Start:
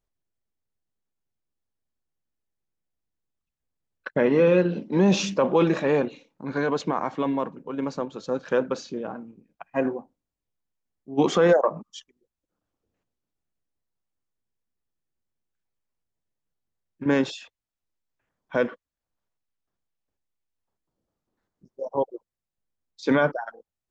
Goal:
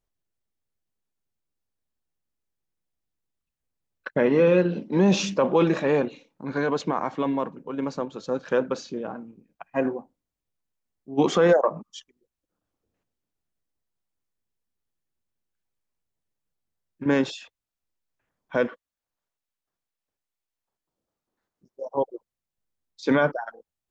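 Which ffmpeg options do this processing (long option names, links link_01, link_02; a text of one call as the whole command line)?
ffmpeg -i in.wav -filter_complex "[0:a]asettb=1/sr,asplit=3[link_01][link_02][link_03];[link_01]atrim=end=18.674[link_04];[link_02]atrim=start=18.67:end=21.97,asetpts=PTS-STARTPTS,afade=type=in:duration=0.004:curve=qsin,afade=type=out:start_time=3.296:duration=0.004:curve=qsin,lowshelf=frequency=320:gain=-8[link_05];[link_03]atrim=start=21.966[link_06];[link_04][link_05]acrossfade=duration=0.004:curve1=hsin:curve2=qsin[link_07];[link_07][link_06]acrossfade=duration=0.004:curve1=qsin:curve2=hsin" out.wav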